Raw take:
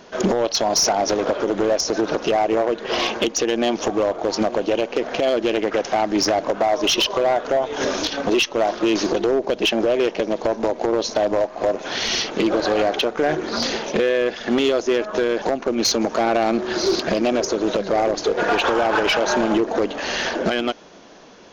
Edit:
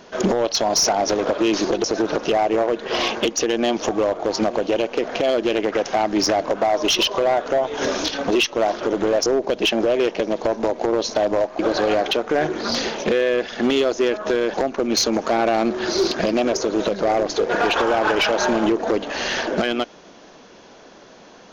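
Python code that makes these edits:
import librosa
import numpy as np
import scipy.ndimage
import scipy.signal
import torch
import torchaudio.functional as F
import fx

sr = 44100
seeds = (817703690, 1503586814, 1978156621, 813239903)

y = fx.edit(x, sr, fx.swap(start_s=1.38, length_s=0.45, other_s=8.8, other_length_s=0.46),
    fx.cut(start_s=11.59, length_s=0.88), tone=tone)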